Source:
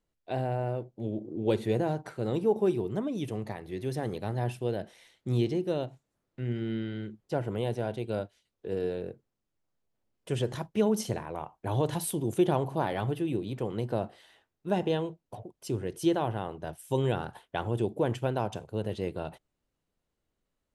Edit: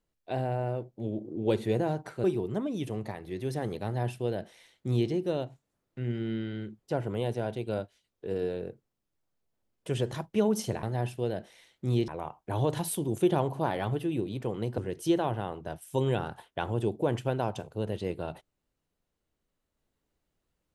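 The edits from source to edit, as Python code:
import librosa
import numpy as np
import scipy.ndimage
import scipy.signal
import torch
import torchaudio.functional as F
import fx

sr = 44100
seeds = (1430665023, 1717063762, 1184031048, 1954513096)

y = fx.edit(x, sr, fx.cut(start_s=2.24, length_s=0.41),
    fx.duplicate(start_s=4.26, length_s=1.25, to_s=11.24),
    fx.cut(start_s=13.94, length_s=1.81), tone=tone)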